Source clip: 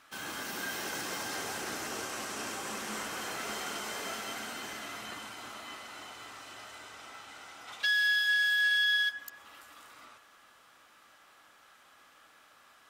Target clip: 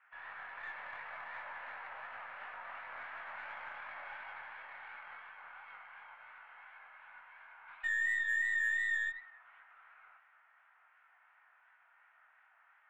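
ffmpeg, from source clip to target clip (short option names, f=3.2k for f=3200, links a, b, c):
-af "highpass=f=540:t=q:w=0.5412,highpass=f=540:t=q:w=1.307,lowpass=f=2.2k:t=q:w=0.5176,lowpass=f=2.2k:t=q:w=0.7071,lowpass=f=2.2k:t=q:w=1.932,afreqshift=160,aeval=exprs='0.0794*(cos(1*acos(clip(val(0)/0.0794,-1,1)))-cos(1*PI/2))+0.00282*(cos(6*acos(clip(val(0)/0.0794,-1,1)))-cos(6*PI/2))':c=same,flanger=delay=19:depth=7.3:speed=2.8,volume=-2.5dB"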